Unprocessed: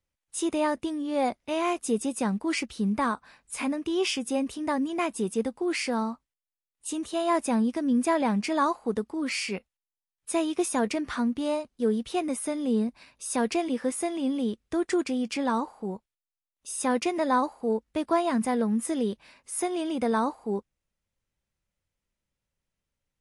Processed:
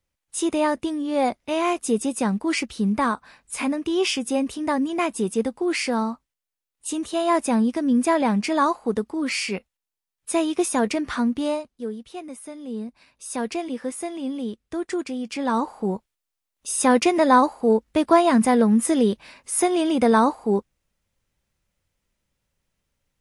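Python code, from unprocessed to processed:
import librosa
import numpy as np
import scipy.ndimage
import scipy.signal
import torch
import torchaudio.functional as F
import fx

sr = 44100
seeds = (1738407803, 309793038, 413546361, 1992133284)

y = fx.gain(x, sr, db=fx.line((11.46, 4.5), (11.96, -7.5), (12.6, -7.5), (13.26, -1.0), (15.28, -1.0), (15.75, 8.5)))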